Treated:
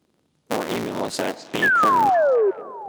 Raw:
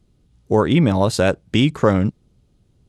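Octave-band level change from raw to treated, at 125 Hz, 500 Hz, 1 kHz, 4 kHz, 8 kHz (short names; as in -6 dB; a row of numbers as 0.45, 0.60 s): -19.5, -1.0, +7.0, -5.5, -2.0 dB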